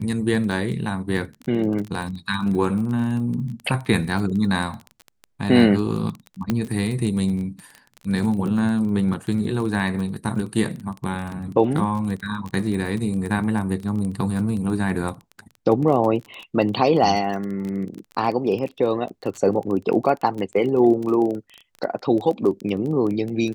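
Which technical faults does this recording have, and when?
surface crackle 20 per second −27 dBFS
0:06.50: click −9 dBFS

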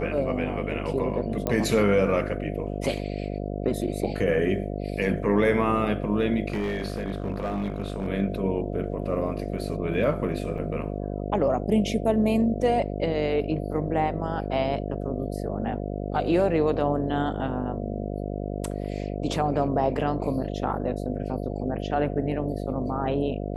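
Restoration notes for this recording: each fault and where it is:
mains buzz 50 Hz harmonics 14 −31 dBFS
0:01.47: click −13 dBFS
0:06.48–0:08.08: clipping −23.5 dBFS
0:10.58: drop-out 4.6 ms

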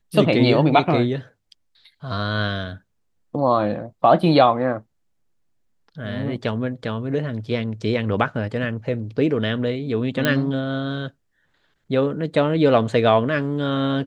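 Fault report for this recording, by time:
0:10.25: click −5 dBFS

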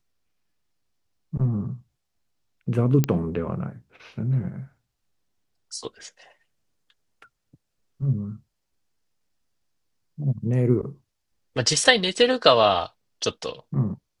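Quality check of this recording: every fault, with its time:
0:03.04: click −8 dBFS

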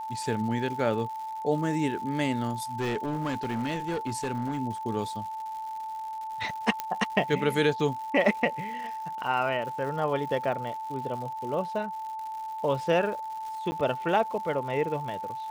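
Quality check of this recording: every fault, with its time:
surface crackle 200 per second −38 dBFS
whistle 880 Hz −33 dBFS
0:02.79–0:04.60: clipping −25.5 dBFS
0:06.80: click −14 dBFS
0:13.71–0:13.72: drop-out 10 ms

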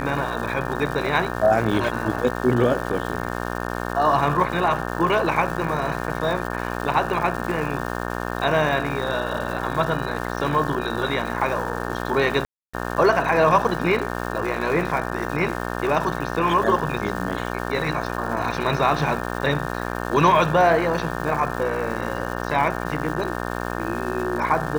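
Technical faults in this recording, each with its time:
mains buzz 60 Hz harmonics 30 −28 dBFS
surface crackle 500 per second −31 dBFS
0:12.45–0:12.73: drop-out 285 ms

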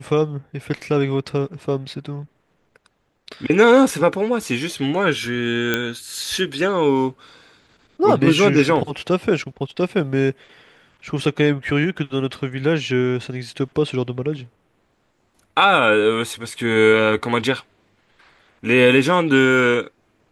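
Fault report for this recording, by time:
0:05.74: click −5 dBFS

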